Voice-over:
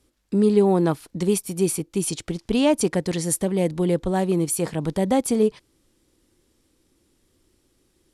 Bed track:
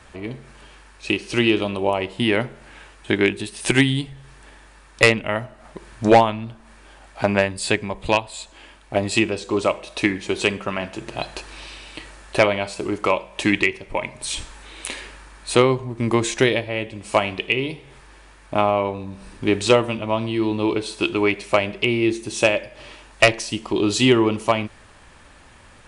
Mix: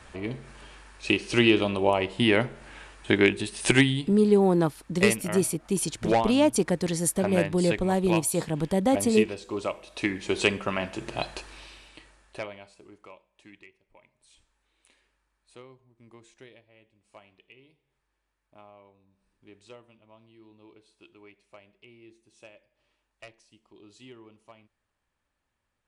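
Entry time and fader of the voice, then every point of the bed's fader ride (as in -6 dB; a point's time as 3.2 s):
3.75 s, -2.5 dB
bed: 3.71 s -2 dB
4.28 s -10.5 dB
9.89 s -10.5 dB
10.35 s -3 dB
11.22 s -3 dB
13.37 s -33 dB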